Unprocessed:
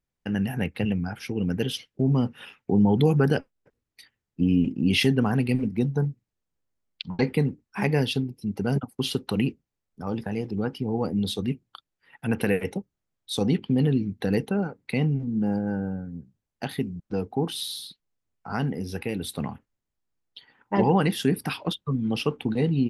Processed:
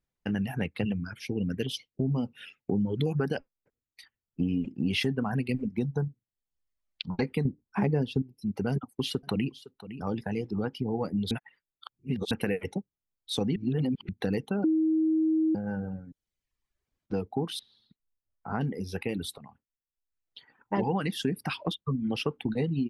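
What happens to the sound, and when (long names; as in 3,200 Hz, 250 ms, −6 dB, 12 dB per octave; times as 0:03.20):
0:00.97–0:03.12: notch on a step sequencer 4.3 Hz 780–1,700 Hz
0:07.45–0:08.22: tilt shelving filter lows +8 dB, about 1,400 Hz
0:08.72–0:10.69: single-tap delay 510 ms −16.5 dB
0:11.31–0:12.31: reverse
0:13.56–0:14.09: reverse
0:14.64–0:15.55: beep over 317 Hz −11.5 dBFS
0:16.12–0:17.06: fill with room tone
0:17.59–0:18.61: low-pass filter 1,500 Hz
0:19.38–0:20.76: fade in, from −16.5 dB
whole clip: reverb reduction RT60 0.84 s; high-shelf EQ 7,900 Hz −7.5 dB; downward compressor 3 to 1, threshold −26 dBFS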